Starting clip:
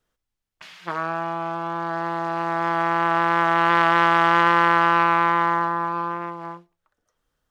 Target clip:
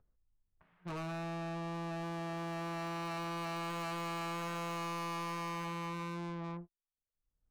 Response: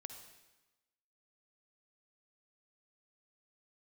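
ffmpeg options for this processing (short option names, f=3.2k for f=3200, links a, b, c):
-af "lowpass=1.4k,aemphasis=mode=reproduction:type=riaa,agate=range=-42dB:threshold=-41dB:ratio=16:detection=peak,acompressor=mode=upward:threshold=-44dB:ratio=2.5,asoftclip=type=tanh:threshold=-35dB,volume=-3dB"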